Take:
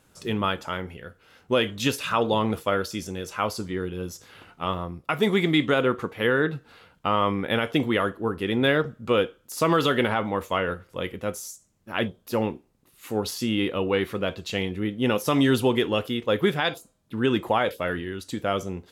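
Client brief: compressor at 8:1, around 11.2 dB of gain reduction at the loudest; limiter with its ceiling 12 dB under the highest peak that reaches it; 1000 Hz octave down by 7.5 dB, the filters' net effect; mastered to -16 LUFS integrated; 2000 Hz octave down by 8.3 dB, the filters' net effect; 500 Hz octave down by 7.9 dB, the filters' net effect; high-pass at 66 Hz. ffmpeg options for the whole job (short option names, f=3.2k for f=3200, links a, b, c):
-af "highpass=66,equalizer=f=500:t=o:g=-8.5,equalizer=f=1k:t=o:g=-4.5,equalizer=f=2k:t=o:g=-9,acompressor=threshold=-32dB:ratio=8,volume=26.5dB,alimiter=limit=-5dB:level=0:latency=1"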